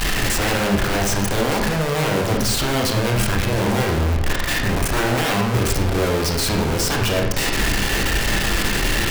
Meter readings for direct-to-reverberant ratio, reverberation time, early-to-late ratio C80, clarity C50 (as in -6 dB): 0.0 dB, 0.70 s, 7.5 dB, 4.5 dB